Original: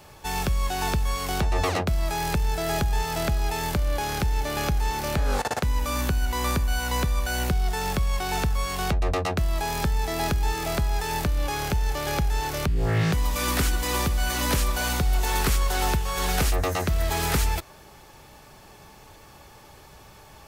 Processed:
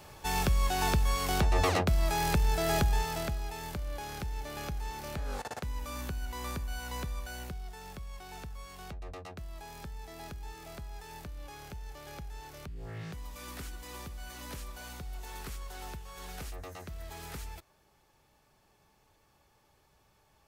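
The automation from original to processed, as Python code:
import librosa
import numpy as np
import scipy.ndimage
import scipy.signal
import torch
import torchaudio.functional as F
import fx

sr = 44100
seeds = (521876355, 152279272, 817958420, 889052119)

y = fx.gain(x, sr, db=fx.line((2.87, -2.5), (3.49, -12.5), (7.12, -12.5), (7.74, -19.0)))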